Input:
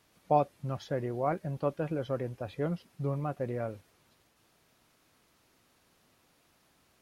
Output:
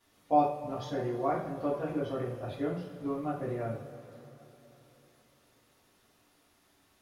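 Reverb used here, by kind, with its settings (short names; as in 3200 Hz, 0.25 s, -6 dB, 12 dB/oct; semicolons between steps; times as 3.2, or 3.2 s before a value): two-slope reverb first 0.43 s, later 3.7 s, from -18 dB, DRR -9 dB; gain -9 dB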